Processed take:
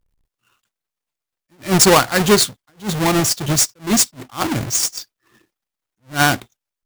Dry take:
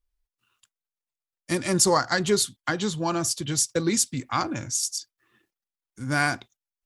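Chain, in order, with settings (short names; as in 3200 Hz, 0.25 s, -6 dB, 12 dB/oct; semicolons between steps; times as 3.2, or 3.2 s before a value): half-waves squared off; attack slew limiter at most 260 dB/s; gain +5.5 dB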